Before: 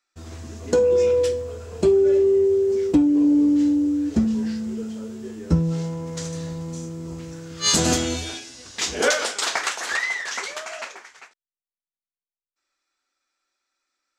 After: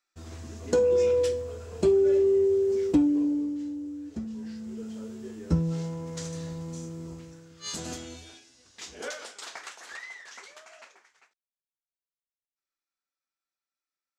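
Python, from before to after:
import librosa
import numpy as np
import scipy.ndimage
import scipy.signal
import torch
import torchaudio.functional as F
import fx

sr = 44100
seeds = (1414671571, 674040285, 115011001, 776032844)

y = fx.gain(x, sr, db=fx.line((3.05, -4.5), (3.6, -15.5), (4.25, -15.5), (4.99, -5.5), (7.03, -5.5), (7.63, -17.0)))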